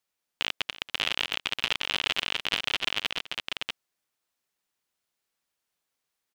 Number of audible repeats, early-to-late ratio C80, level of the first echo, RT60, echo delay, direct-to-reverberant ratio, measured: 2, no reverb audible, −16.5 dB, no reverb audible, 281 ms, no reverb audible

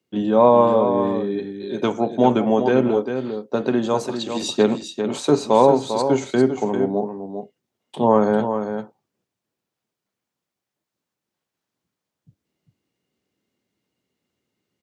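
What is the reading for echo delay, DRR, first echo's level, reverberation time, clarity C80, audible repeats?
398 ms, no reverb audible, −8.0 dB, no reverb audible, no reverb audible, 1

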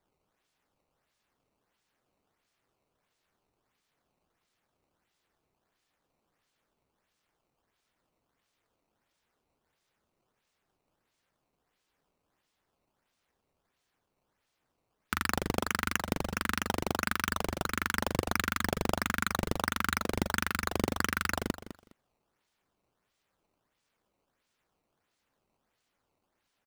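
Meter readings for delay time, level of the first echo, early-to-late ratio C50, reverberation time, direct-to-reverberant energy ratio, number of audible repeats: 206 ms, −13.0 dB, no reverb audible, no reverb audible, no reverb audible, 2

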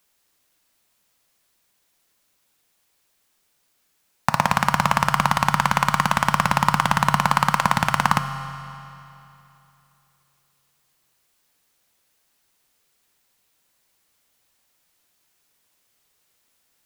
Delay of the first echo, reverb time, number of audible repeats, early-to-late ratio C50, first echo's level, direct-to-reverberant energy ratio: no echo audible, 2.9 s, no echo audible, 9.0 dB, no echo audible, 8.0 dB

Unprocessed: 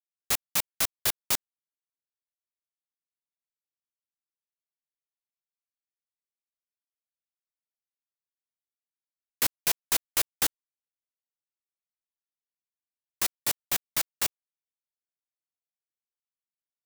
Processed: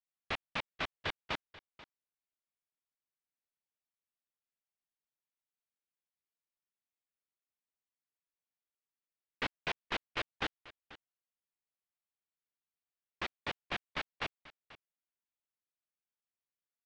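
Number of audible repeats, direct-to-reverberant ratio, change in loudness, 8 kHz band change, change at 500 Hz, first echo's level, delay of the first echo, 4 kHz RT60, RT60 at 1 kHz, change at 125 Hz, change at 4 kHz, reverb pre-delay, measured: 1, no reverb audible, −12.0 dB, −31.5 dB, −2.5 dB, −18.5 dB, 487 ms, no reverb audible, no reverb audible, −2.5 dB, −9.0 dB, no reverb audible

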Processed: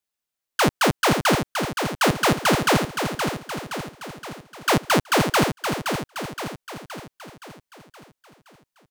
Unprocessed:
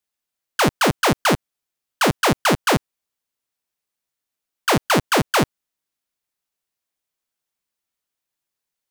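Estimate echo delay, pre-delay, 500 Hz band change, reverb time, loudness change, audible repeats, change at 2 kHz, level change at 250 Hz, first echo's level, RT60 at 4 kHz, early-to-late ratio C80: 520 ms, no reverb audible, −1.0 dB, no reverb audible, −3.0 dB, 6, −1.0 dB, −1.0 dB, −6.5 dB, no reverb audible, no reverb audible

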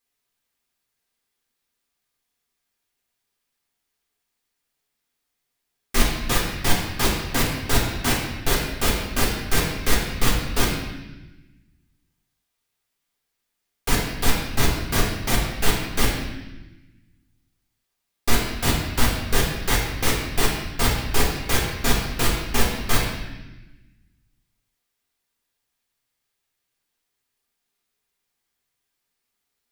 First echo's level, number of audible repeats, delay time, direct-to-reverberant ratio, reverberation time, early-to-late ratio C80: no echo audible, no echo audible, no echo audible, −4.5 dB, 1.1 s, 4.5 dB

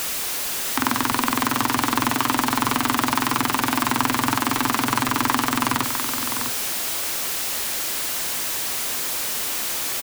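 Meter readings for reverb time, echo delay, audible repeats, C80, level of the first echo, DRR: no reverb audible, 653 ms, 1, no reverb audible, −8.0 dB, no reverb audible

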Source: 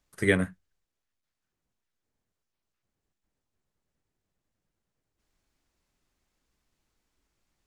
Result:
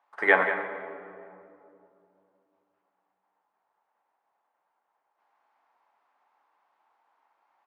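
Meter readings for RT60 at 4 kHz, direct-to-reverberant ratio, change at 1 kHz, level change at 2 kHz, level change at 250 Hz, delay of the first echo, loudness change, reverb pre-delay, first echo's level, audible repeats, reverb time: 1.3 s, 4.5 dB, +17.0 dB, +7.5 dB, −8.5 dB, 185 ms, +3.0 dB, 3 ms, −11.0 dB, 1, 2.6 s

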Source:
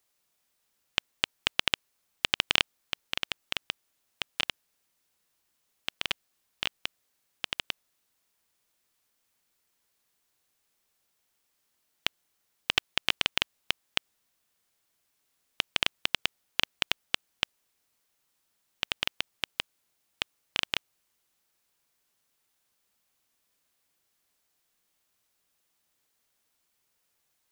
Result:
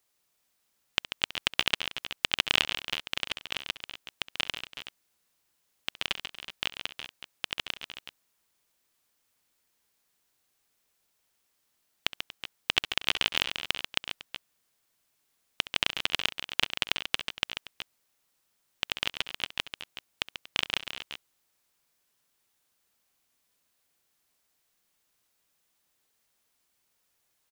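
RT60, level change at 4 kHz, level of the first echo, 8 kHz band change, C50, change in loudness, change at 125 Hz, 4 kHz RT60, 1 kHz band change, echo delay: no reverb audible, +1.0 dB, −17.5 dB, +1.0 dB, no reverb audible, +0.5 dB, +1.0 dB, no reverb audible, +1.0 dB, 67 ms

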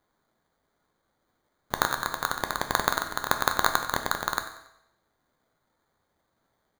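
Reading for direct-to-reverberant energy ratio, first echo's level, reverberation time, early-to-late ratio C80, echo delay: 5.5 dB, −15.0 dB, 0.80 s, 10.5 dB, 93 ms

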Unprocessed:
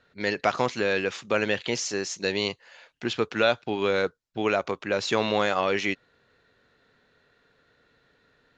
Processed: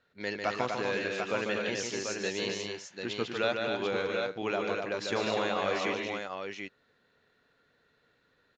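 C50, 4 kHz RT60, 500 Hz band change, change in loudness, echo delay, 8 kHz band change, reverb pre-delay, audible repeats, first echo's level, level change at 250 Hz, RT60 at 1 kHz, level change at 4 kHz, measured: no reverb audible, no reverb audible, −5.0 dB, −6.0 dB, 147 ms, −5.0 dB, no reverb audible, 4, −5.0 dB, −5.5 dB, no reverb audible, −5.0 dB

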